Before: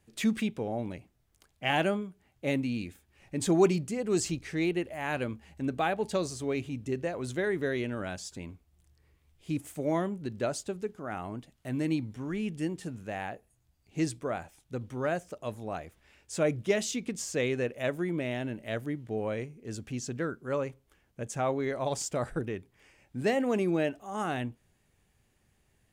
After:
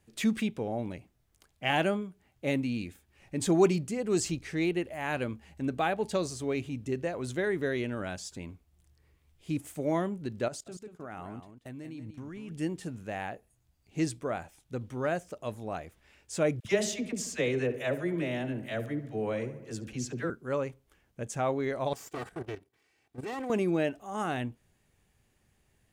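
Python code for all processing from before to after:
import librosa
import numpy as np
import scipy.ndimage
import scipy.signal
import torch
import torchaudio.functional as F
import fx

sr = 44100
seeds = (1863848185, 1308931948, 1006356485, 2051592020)

y = fx.chain(x, sr, fx.level_steps(step_db=21),
    fx.echo_single(ms=184, db=-10.0), at=(10.48, 12.51))
y = fx.chain(y, sr, fx.dispersion(late='lows', ms=50.0, hz=700.0),
    fx.echo_filtered(ms=69, feedback_pct=66, hz=2800.0, wet_db=-13.0), at=(16.6, 20.3))
y = fx.chain(y, sr, fx.lower_of_two(delay_ms=2.6),
    fx.highpass(hz=93.0, slope=12),
    fx.level_steps(step_db=12), at=(21.93, 23.5))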